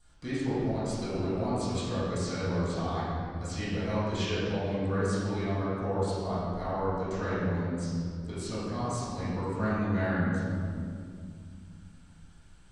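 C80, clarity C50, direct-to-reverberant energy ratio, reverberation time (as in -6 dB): -2.0 dB, -4.5 dB, -15.0 dB, 2.3 s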